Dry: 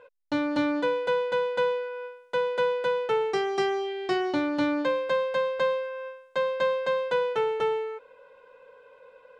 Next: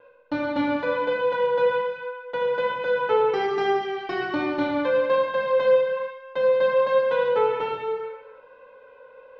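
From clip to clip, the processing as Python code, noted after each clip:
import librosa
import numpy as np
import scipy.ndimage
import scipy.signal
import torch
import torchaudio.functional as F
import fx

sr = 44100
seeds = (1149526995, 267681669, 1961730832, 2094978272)

y = fx.vibrato(x, sr, rate_hz=1.2, depth_cents=22.0)
y = fx.air_absorb(y, sr, metres=210.0)
y = fx.rev_gated(y, sr, seeds[0], gate_ms=470, shape='falling', drr_db=-3.0)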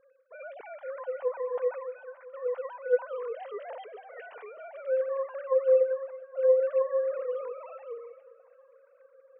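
y = fx.sine_speech(x, sr)
y = fx.high_shelf(y, sr, hz=3000.0, db=-11.5)
y = fx.echo_feedback(y, sr, ms=409, feedback_pct=60, wet_db=-22.5)
y = y * librosa.db_to_amplitude(-7.0)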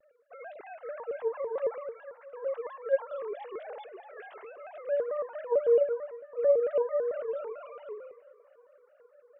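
y = fx.vibrato_shape(x, sr, shape='square', rate_hz=4.5, depth_cents=160.0)
y = y * librosa.db_to_amplitude(-1.5)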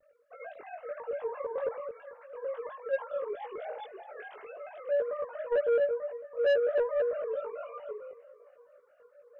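y = fx.chorus_voices(x, sr, voices=6, hz=0.57, base_ms=20, depth_ms=1.0, mix_pct=45)
y = 10.0 ** (-25.0 / 20.0) * np.tanh(y / 10.0 ** (-25.0 / 20.0))
y = y * librosa.db_to_amplitude(3.5)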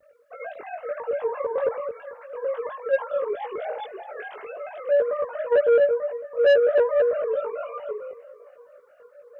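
y = scipy.signal.sosfilt(scipy.signal.butter(2, 42.0, 'highpass', fs=sr, output='sos'), x)
y = y * librosa.db_to_amplitude(8.5)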